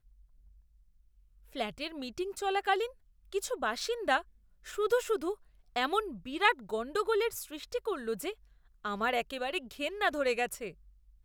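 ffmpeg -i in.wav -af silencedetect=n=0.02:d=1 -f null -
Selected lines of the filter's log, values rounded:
silence_start: 0.00
silence_end: 1.56 | silence_duration: 1.56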